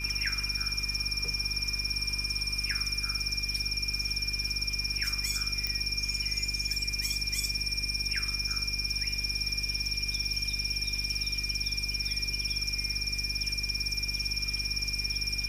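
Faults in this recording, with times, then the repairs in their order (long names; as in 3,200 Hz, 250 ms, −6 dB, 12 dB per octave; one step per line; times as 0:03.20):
mains hum 50 Hz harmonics 8 −38 dBFS
whistle 2,400 Hz −36 dBFS
0:05.67: click −15 dBFS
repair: click removal
hum removal 50 Hz, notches 8
notch filter 2,400 Hz, Q 30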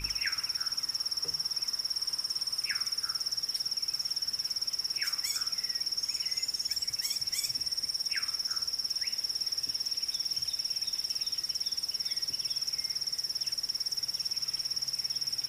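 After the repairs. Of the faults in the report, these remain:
none of them is left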